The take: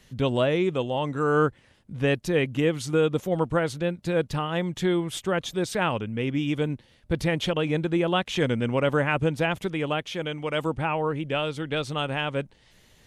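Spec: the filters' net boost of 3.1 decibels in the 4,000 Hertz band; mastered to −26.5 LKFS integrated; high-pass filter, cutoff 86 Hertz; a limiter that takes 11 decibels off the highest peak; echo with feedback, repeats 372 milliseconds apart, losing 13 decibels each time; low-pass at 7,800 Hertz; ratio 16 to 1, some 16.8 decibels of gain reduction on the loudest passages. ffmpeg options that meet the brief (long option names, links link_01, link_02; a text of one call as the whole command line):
ffmpeg -i in.wav -af "highpass=86,lowpass=7800,equalizer=frequency=4000:width_type=o:gain=4.5,acompressor=threshold=-35dB:ratio=16,alimiter=level_in=11dB:limit=-24dB:level=0:latency=1,volume=-11dB,aecho=1:1:372|744|1116:0.224|0.0493|0.0108,volume=17.5dB" out.wav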